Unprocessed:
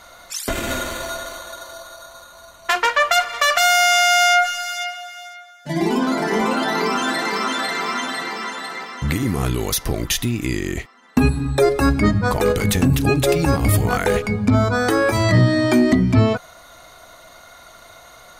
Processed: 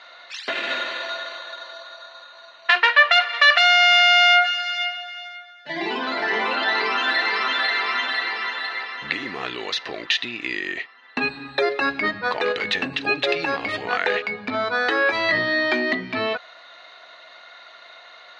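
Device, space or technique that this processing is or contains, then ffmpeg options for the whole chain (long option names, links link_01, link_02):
phone earpiece: -af "highpass=470,equalizer=frequency=1800:width_type=q:width=4:gain=9,equalizer=frequency=2700:width_type=q:width=4:gain=8,equalizer=frequency=4000:width_type=q:width=4:gain=8,lowpass=frequency=4400:width=0.5412,lowpass=frequency=4400:width=1.3066,volume=-3dB"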